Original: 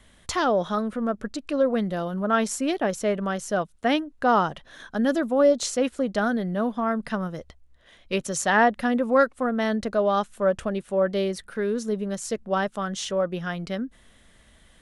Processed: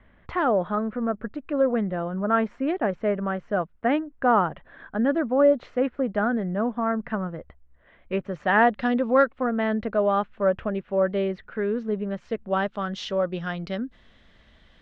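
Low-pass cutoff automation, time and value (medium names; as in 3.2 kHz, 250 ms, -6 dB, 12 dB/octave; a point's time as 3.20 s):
low-pass 24 dB/octave
8.36 s 2.2 kHz
8.91 s 4.6 kHz
9.49 s 2.7 kHz
12.20 s 2.7 kHz
13.08 s 4.7 kHz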